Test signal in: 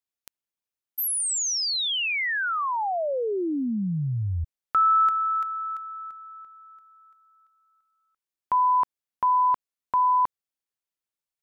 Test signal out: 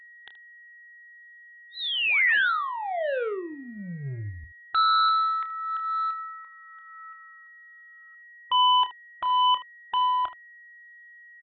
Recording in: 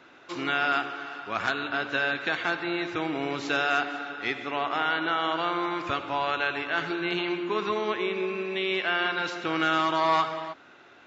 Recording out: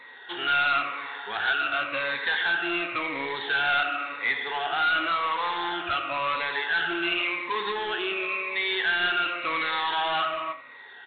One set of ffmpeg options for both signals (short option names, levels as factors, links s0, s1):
-af "afftfilt=real='re*pow(10,15/40*sin(2*PI*(0.98*log(max(b,1)*sr/1024/100)/log(2)-(-0.93)*(pts-256)/sr)))':imag='im*pow(10,15/40*sin(2*PI*(0.98*log(max(b,1)*sr/1024/100)/log(2)-(-0.93)*(pts-256)/sr)))':win_size=1024:overlap=0.75,equalizer=f=200:w=1.1:g=-7,aeval=exprs='val(0)+0.00224*sin(2*PI*1900*n/s)':c=same,aresample=8000,asoftclip=type=tanh:threshold=0.0596,aresample=44100,tiltshelf=f=690:g=-6,aecho=1:1:29|76:0.266|0.158" -ar 24000 -c:a aac -b:a 96k